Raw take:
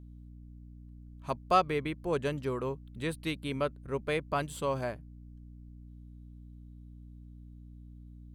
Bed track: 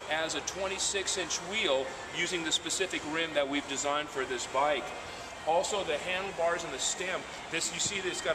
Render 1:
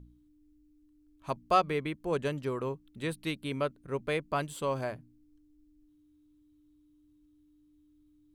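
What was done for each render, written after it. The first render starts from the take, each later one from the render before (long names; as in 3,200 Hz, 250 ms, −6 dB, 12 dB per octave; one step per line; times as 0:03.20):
hum removal 60 Hz, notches 4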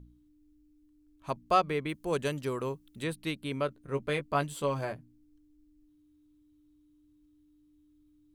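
0:01.89–0:03.04: high-shelf EQ 4,100 Hz +10 dB
0:03.67–0:04.93: double-tracking delay 14 ms −6 dB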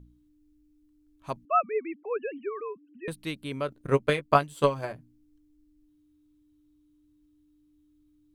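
0:01.45–0:03.08: three sine waves on the formant tracks
0:03.72–0:04.94: transient designer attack +12 dB, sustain −5 dB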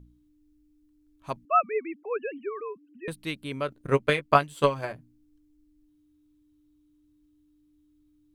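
dynamic equaliser 2,200 Hz, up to +4 dB, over −40 dBFS, Q 0.76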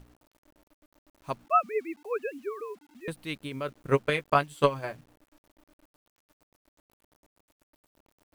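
amplitude tremolo 8.4 Hz, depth 43%
bit-depth reduction 10 bits, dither none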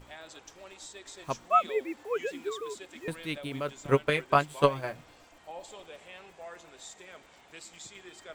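mix in bed track −15.5 dB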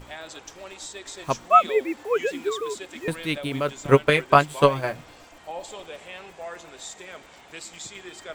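level +8 dB
brickwall limiter −2 dBFS, peak gain reduction 3 dB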